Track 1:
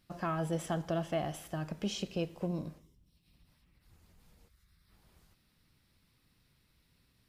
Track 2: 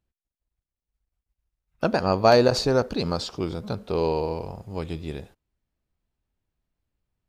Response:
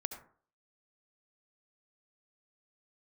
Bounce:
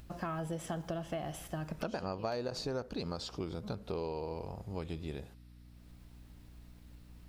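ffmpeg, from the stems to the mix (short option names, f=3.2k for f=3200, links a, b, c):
-filter_complex "[0:a]volume=1dB[a];[1:a]acompressor=mode=upward:threshold=-30dB:ratio=2.5,aeval=exprs='val(0)+0.00447*(sin(2*PI*60*n/s)+sin(2*PI*2*60*n/s)/2+sin(2*PI*3*60*n/s)/3+sin(2*PI*4*60*n/s)/4+sin(2*PI*5*60*n/s)/5)':c=same,volume=-7dB,asplit=2[b][c];[c]apad=whole_len=321057[d];[a][d]sidechaincompress=threshold=-40dB:ratio=8:attack=6.7:release=185[e];[e][b]amix=inputs=2:normalize=0,acompressor=threshold=-34dB:ratio=6"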